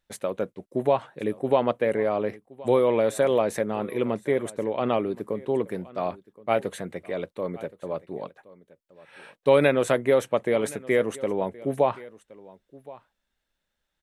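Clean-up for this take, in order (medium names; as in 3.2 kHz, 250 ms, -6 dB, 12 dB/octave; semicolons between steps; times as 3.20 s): inverse comb 1071 ms -20.5 dB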